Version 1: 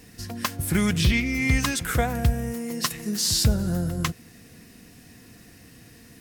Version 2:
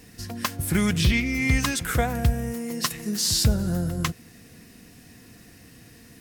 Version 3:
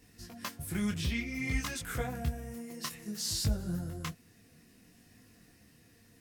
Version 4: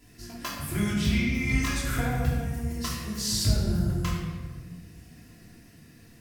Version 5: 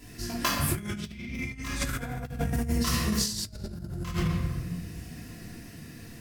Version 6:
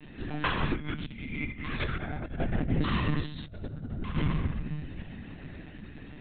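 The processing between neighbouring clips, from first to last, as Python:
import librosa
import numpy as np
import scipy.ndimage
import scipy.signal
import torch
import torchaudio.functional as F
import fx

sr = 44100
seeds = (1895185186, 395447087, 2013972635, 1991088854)

y1 = x
y2 = fx.detune_double(y1, sr, cents=20)
y2 = F.gain(torch.from_numpy(y2), -8.0).numpy()
y3 = fx.room_shoebox(y2, sr, seeds[0], volume_m3=1300.0, walls='mixed', distance_m=3.0)
y3 = F.gain(torch.from_numpy(y3), 1.5).numpy()
y4 = fx.over_compress(y3, sr, threshold_db=-32.0, ratio=-0.5)
y4 = F.gain(torch.from_numpy(y4), 2.5).numpy()
y5 = fx.lpc_monotone(y4, sr, seeds[1], pitch_hz=150.0, order=16)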